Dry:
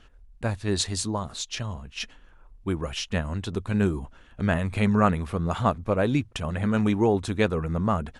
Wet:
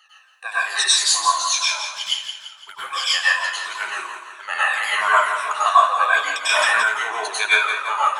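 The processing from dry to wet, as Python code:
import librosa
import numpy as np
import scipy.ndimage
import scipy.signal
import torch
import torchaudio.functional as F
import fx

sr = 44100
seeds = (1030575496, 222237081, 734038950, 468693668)

y = fx.spec_ripple(x, sr, per_octave=1.7, drift_hz=-2.9, depth_db=21)
y = scipy.signal.sosfilt(scipy.signal.butter(4, 950.0, 'highpass', fs=sr, output='sos'), y)
y = fx.env_flanger(y, sr, rest_ms=10.6, full_db=-29.0, at=(1.89, 2.78))
y = fx.echo_feedback(y, sr, ms=170, feedback_pct=47, wet_db=-8.5)
y = fx.rev_plate(y, sr, seeds[0], rt60_s=0.53, hf_ratio=0.75, predelay_ms=85, drr_db=-9.0)
y = fx.env_flatten(y, sr, amount_pct=100, at=(6.49, 6.89))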